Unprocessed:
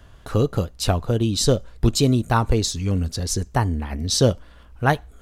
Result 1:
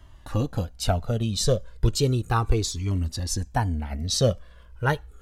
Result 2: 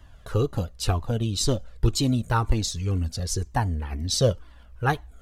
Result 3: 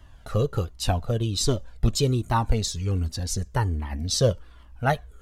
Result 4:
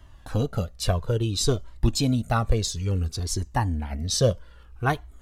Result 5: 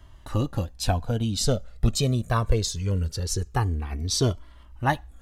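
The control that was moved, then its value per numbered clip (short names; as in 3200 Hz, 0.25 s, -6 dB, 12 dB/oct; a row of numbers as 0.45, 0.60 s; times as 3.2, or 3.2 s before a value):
cascading flanger, rate: 0.34, 2, 1.3, 0.59, 0.22 Hz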